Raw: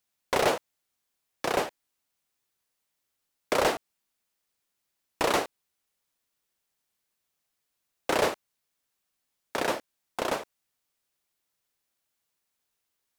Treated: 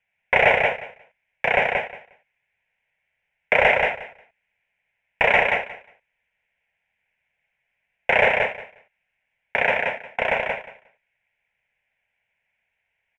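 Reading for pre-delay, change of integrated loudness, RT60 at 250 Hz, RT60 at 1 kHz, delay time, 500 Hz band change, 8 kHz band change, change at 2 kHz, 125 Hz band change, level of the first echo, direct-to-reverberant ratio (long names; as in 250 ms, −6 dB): no reverb audible, +9.0 dB, no reverb audible, no reverb audible, 179 ms, +7.0 dB, below −15 dB, +15.5 dB, +6.5 dB, −4.0 dB, no reverb audible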